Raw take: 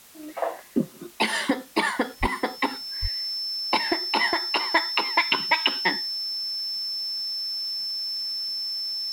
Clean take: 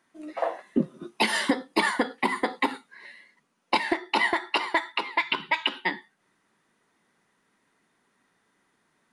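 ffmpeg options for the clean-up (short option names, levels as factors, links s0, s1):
-filter_complex "[0:a]bandreject=f=5300:w=30,asplit=3[s0][s1][s2];[s0]afade=t=out:st=2.2:d=0.02[s3];[s1]highpass=f=140:w=0.5412,highpass=f=140:w=1.3066,afade=t=in:st=2.2:d=0.02,afade=t=out:st=2.32:d=0.02[s4];[s2]afade=t=in:st=2.32:d=0.02[s5];[s3][s4][s5]amix=inputs=3:normalize=0,asplit=3[s6][s7][s8];[s6]afade=t=out:st=3.01:d=0.02[s9];[s7]highpass=f=140:w=0.5412,highpass=f=140:w=1.3066,afade=t=in:st=3.01:d=0.02,afade=t=out:st=3.13:d=0.02[s10];[s8]afade=t=in:st=3.13:d=0.02[s11];[s9][s10][s11]amix=inputs=3:normalize=0,afwtdn=0.0032,asetnsamples=n=441:p=0,asendcmd='4.75 volume volume -3.5dB',volume=1"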